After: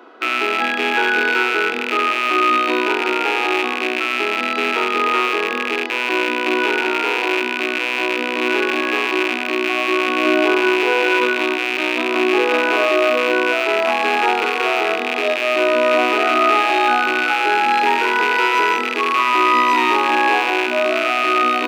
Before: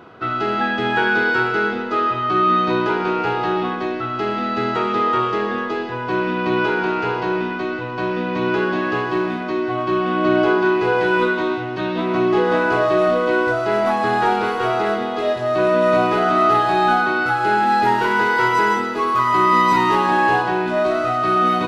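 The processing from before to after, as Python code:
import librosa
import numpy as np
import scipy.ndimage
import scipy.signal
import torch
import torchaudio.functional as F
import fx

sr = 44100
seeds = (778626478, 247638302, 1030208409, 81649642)

y = fx.rattle_buzz(x, sr, strikes_db=-35.0, level_db=-8.0)
y = scipy.signal.sosfilt(scipy.signal.butter(12, 240.0, 'highpass', fs=sr, output='sos'), y)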